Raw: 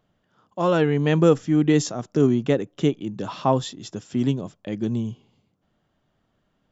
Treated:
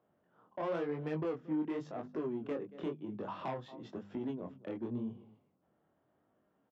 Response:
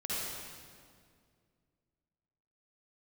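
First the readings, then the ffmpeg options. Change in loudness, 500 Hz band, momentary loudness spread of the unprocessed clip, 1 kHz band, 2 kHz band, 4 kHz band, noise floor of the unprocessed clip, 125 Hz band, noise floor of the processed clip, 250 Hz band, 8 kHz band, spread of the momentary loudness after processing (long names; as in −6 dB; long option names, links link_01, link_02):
−17.0 dB, −16.0 dB, 13 LU, −15.0 dB, −17.5 dB, −23.0 dB, −71 dBFS, −22.0 dB, −77 dBFS, −16.5 dB, can't be measured, 8 LU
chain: -filter_complex "[0:a]acrossover=split=230[link_01][link_02];[link_01]aemphasis=mode=production:type=bsi[link_03];[link_02]adynamicsmooth=sensitivity=1:basefreq=1700[link_04];[link_03][link_04]amix=inputs=2:normalize=0,bandreject=frequency=50:width_type=h:width=6,bandreject=frequency=100:width_type=h:width=6,bandreject=frequency=150:width_type=h:width=6,bandreject=frequency=200:width_type=h:width=6,bandreject=frequency=250:width_type=h:width=6,asplit=2[link_05][link_06];[link_06]adelay=227.4,volume=-26dB,highshelf=frequency=4000:gain=-5.12[link_07];[link_05][link_07]amix=inputs=2:normalize=0,acompressor=threshold=-36dB:ratio=2.5,asoftclip=type=tanh:threshold=-29.5dB,highpass=49,flanger=delay=19:depth=7:speed=0.94,highshelf=frequency=6100:gain=-11.5,volume=2dB"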